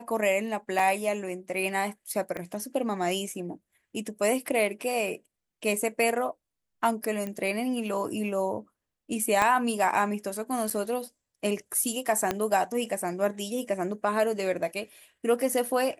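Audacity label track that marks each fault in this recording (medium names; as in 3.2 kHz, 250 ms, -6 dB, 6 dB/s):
0.790000	0.790000	dropout 3.8 ms
2.370000	2.370000	pop -21 dBFS
7.270000	7.270000	pop -21 dBFS
9.420000	9.420000	pop -11 dBFS
10.700000	10.710000	dropout 6 ms
12.310000	12.310000	pop -11 dBFS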